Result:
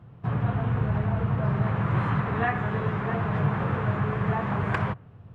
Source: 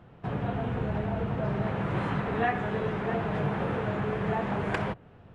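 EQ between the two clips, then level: dynamic bell 1.5 kHz, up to +7 dB, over -46 dBFS, Q 0.71; peaking EQ 110 Hz +13.5 dB 1.5 oct; peaking EQ 1.1 kHz +5.5 dB 0.33 oct; -4.5 dB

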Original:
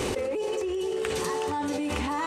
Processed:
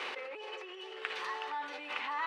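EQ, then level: high-pass 1.4 kHz 12 dB/octave; distance through air 350 m; +3.0 dB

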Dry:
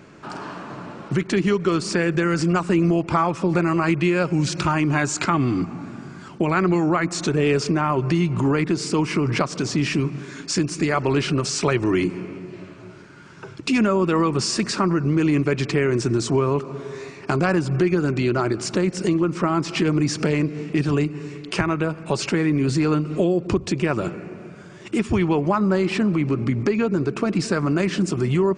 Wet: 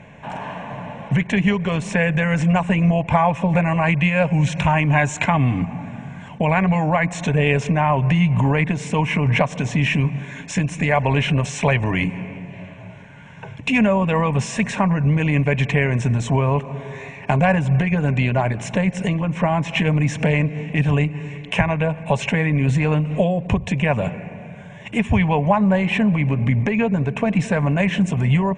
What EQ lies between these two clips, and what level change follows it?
distance through air 76 m; static phaser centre 1.3 kHz, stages 6; +8.0 dB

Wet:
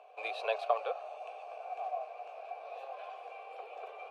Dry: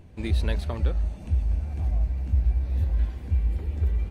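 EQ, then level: vowel filter a; Chebyshev high-pass 450 Hz, order 5; +15.5 dB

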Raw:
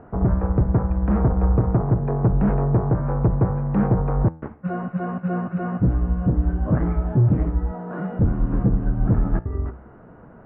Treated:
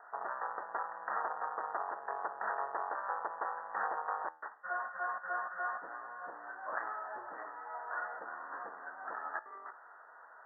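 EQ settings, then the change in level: Bessel high-pass 1.4 kHz, order 4; Chebyshev low-pass 1.9 kHz, order 10; +5.0 dB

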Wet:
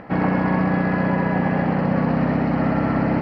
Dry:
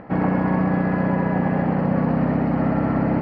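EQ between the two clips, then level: treble shelf 2.1 kHz +10 dB; 0.0 dB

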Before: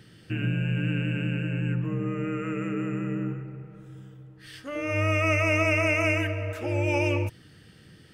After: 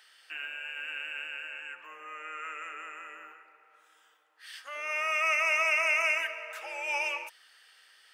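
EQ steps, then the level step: high-pass 820 Hz 24 dB/octave; 0.0 dB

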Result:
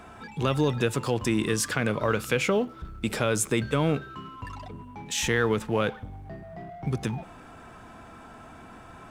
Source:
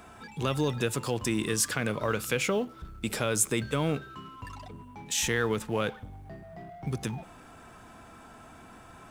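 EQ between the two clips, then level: treble shelf 5.2 kHz -8.5 dB; +4.0 dB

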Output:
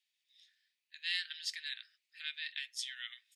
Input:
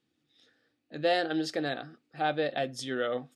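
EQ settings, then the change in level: steep high-pass 1.9 kHz 48 dB/octave; 0.0 dB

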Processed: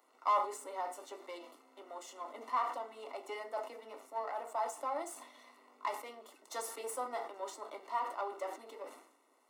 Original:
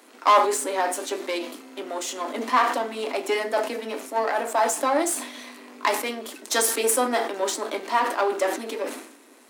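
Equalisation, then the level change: Savitzky-Golay filter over 65 samples; differentiator; bass shelf 190 Hz -6.5 dB; +6.0 dB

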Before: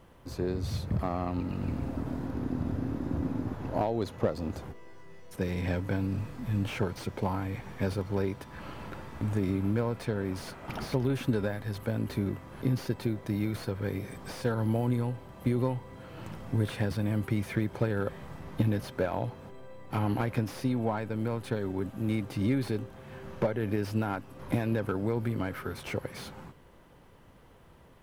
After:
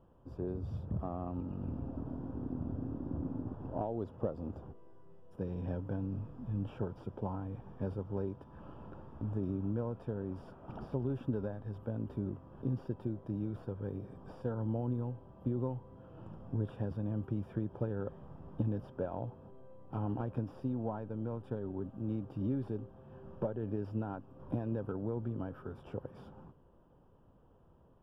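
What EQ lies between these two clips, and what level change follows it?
boxcar filter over 21 samples; -6.5 dB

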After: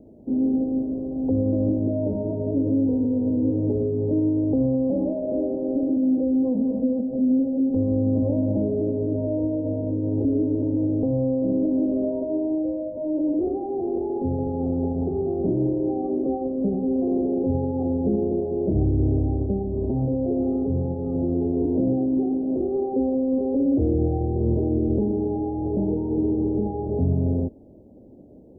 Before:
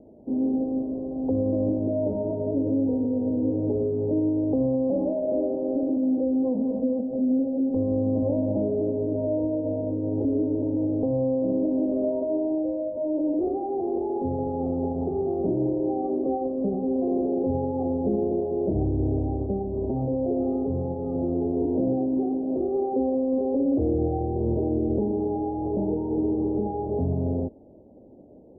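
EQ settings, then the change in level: peaking EQ 920 Hz -8.5 dB 2.6 oct; +5.5 dB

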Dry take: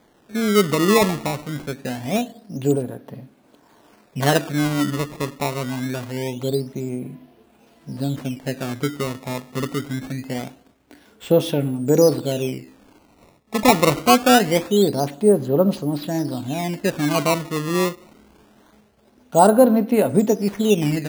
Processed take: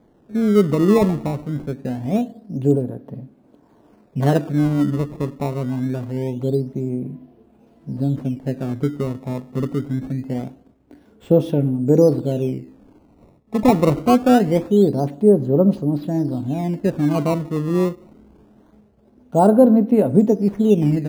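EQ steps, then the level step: tilt shelf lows +9 dB, about 880 Hz; -4.0 dB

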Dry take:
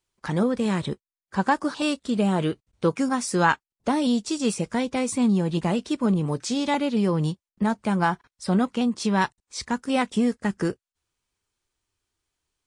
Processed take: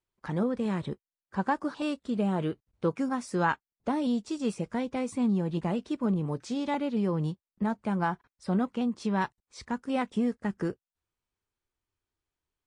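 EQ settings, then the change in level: treble shelf 3.2 kHz -11 dB; -5.5 dB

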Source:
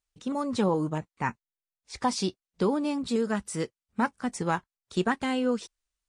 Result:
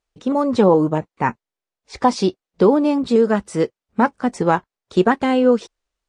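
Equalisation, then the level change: distance through air 61 m; peaking EQ 500 Hz +8 dB 2.2 oct; +6.0 dB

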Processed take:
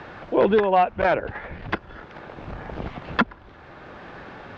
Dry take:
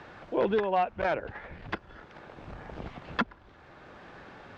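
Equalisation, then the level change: distance through air 78 m; +8.5 dB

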